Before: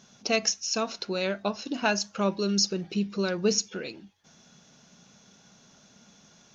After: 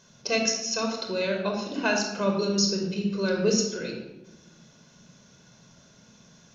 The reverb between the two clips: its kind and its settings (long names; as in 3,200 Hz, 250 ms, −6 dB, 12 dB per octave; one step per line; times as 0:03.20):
rectangular room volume 3,800 cubic metres, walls furnished, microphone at 5.1 metres
level −3 dB